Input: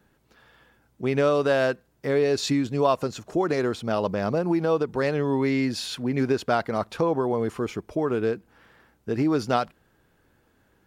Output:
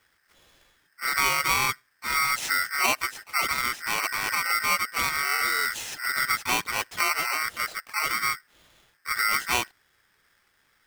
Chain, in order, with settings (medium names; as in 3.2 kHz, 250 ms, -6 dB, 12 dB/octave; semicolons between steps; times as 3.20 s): harmony voices +5 st -4 dB; polarity switched at an audio rate 1.7 kHz; trim -4 dB